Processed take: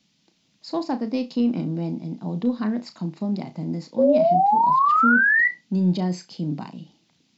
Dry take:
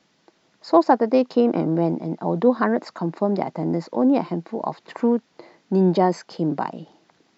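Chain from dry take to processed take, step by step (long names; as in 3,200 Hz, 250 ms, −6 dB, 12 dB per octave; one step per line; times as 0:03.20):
flat-topped bell 800 Hz −13.5 dB 2.8 octaves
soft clipping −9 dBFS, distortion −31 dB
sound drawn into the spectrogram rise, 0:03.98–0:05.48, 520–2,000 Hz −18 dBFS
flutter between parallel walls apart 5.7 metres, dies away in 0.2 s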